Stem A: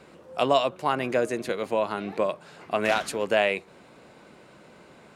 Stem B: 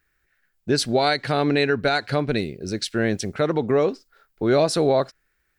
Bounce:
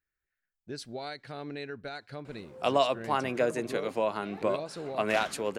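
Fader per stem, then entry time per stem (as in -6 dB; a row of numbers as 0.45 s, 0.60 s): -3.5 dB, -19.0 dB; 2.25 s, 0.00 s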